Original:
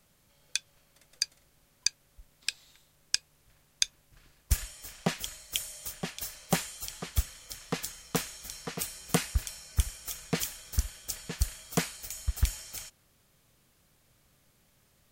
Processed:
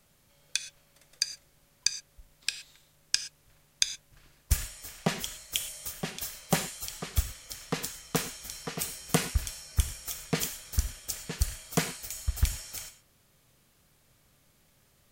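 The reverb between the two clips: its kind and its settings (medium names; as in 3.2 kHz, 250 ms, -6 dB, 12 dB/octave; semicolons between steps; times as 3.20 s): gated-style reverb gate 140 ms flat, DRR 9.5 dB; trim +1 dB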